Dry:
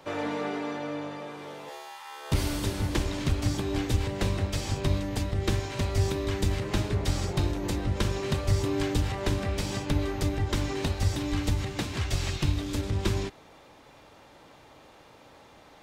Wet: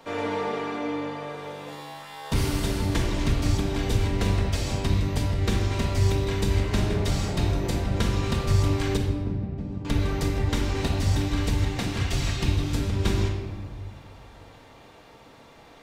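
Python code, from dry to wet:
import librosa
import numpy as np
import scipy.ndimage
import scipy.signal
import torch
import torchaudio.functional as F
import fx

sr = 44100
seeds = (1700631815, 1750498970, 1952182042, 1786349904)

y = fx.bandpass_q(x, sr, hz=170.0, q=1.2, at=(8.97, 9.85))
y = fx.room_shoebox(y, sr, seeds[0], volume_m3=1300.0, walls='mixed', distance_m=1.7)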